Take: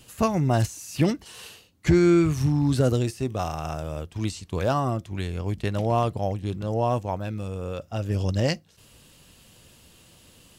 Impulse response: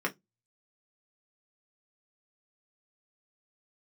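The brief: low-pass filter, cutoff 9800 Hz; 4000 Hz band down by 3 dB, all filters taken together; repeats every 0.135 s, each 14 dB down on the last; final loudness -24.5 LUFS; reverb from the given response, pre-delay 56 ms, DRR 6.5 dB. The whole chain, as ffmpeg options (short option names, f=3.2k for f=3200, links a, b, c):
-filter_complex "[0:a]lowpass=9.8k,equalizer=f=4k:t=o:g=-4,aecho=1:1:135|270:0.2|0.0399,asplit=2[a][b];[1:a]atrim=start_sample=2205,adelay=56[c];[b][c]afir=irnorm=-1:irlink=0,volume=-14dB[d];[a][d]amix=inputs=2:normalize=0"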